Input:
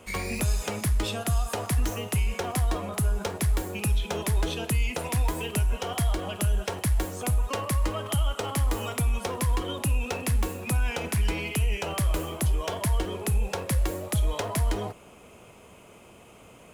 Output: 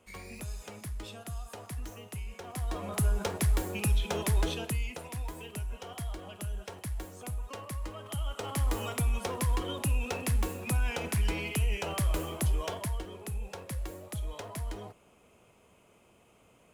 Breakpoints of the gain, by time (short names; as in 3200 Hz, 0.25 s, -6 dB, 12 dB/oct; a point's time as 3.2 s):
2.41 s -14 dB
2.97 s -2 dB
4.45 s -2 dB
5.07 s -12 dB
7.97 s -12 dB
8.68 s -3.5 dB
12.63 s -3.5 dB
13.05 s -11.5 dB